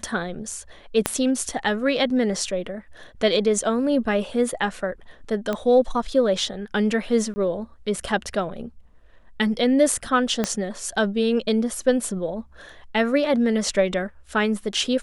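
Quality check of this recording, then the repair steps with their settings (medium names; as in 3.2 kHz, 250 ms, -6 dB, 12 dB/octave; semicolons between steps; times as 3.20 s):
1.06 s: pop -4 dBFS
5.53 s: pop -13 dBFS
7.34–7.36 s: dropout 20 ms
10.44 s: pop -8 dBFS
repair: de-click; interpolate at 7.34 s, 20 ms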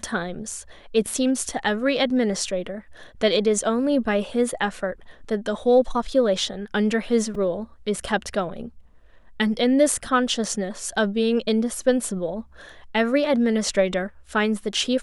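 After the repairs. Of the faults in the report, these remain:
1.06 s: pop
10.44 s: pop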